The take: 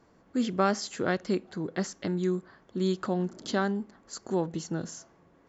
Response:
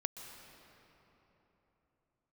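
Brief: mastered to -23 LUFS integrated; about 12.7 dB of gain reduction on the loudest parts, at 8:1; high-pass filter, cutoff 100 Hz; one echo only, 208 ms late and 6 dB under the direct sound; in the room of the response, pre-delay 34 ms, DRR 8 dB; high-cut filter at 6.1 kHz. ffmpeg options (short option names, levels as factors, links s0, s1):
-filter_complex "[0:a]highpass=100,lowpass=6100,acompressor=threshold=0.0224:ratio=8,aecho=1:1:208:0.501,asplit=2[s0][s1];[1:a]atrim=start_sample=2205,adelay=34[s2];[s1][s2]afir=irnorm=-1:irlink=0,volume=0.398[s3];[s0][s3]amix=inputs=2:normalize=0,volume=5.62"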